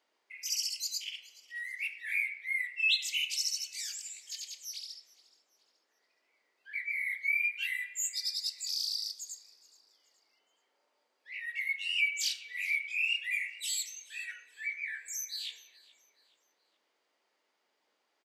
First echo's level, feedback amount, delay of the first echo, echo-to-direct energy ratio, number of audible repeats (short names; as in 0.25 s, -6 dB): -22.0 dB, 36%, 0.424 s, -21.5 dB, 2